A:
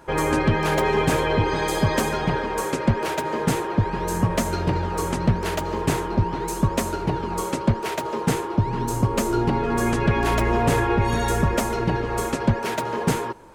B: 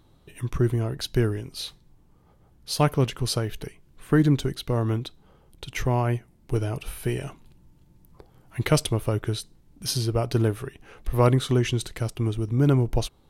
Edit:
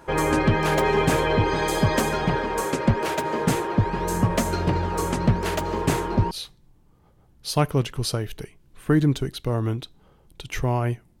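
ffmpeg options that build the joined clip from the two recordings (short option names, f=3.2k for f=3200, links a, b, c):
-filter_complex "[0:a]apad=whole_dur=11.2,atrim=end=11.2,atrim=end=6.312[a];[1:a]atrim=start=1.538:end=6.43[b];[a][b]acrossfade=d=0.004:c1=hsin:c2=hsin"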